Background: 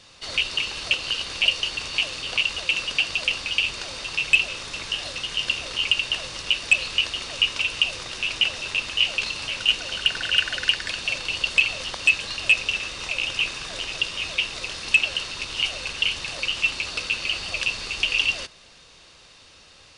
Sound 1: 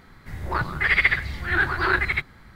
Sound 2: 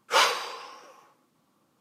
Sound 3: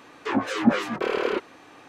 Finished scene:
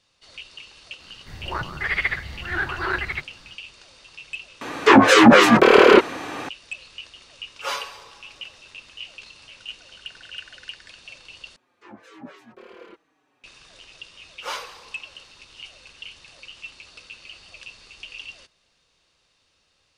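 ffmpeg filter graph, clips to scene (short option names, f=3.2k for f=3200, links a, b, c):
-filter_complex "[3:a]asplit=2[a][b];[2:a]asplit=2[c][d];[0:a]volume=-16.5dB[e];[1:a]equalizer=f=630:w=0.7:g=4[f];[a]alimiter=level_in=17.5dB:limit=-1dB:release=50:level=0:latency=1[g];[c]aecho=1:1:7.1:0.89[h];[b]asplit=2[i][j];[j]adelay=5,afreqshift=-1.1[k];[i][k]amix=inputs=2:normalize=1[l];[e]asplit=3[m][n][o];[m]atrim=end=4.614[p];[g]atrim=end=1.88,asetpts=PTS-STARTPTS,volume=-0.5dB[q];[n]atrim=start=6.486:end=11.564[r];[l]atrim=end=1.88,asetpts=PTS-STARTPTS,volume=-16.5dB[s];[o]atrim=start=13.436[t];[f]atrim=end=2.55,asetpts=PTS-STARTPTS,volume=-5.5dB,afade=t=in:d=0.004:c=hsin,afade=t=out:st=2.546:d=0.004:c=hsin,adelay=1000[u];[h]atrim=end=1.8,asetpts=PTS-STARTPTS,volume=-9.5dB,afade=t=in:d=0.004:c=hsin,afade=t=out:st=1.796:d=0.004:c=hsin,adelay=7510[v];[d]atrim=end=1.8,asetpts=PTS-STARTPTS,volume=-10dB,afade=t=in:d=0.004:c=hsin,afade=t=out:st=1.796:d=0.004:c=hsin,adelay=14320[w];[p][q]acrossfade=d=0.004:c1=hsin:c2=hsin[x];[x][r]acrossfade=d=0.004:c1=hsin:c2=hsin[y];[y][s]acrossfade=d=0.004:c1=hsin:c2=hsin[z];[z][t]acrossfade=d=0.004:c1=hsin:c2=hsin[aa];[aa][u][v][w]amix=inputs=4:normalize=0"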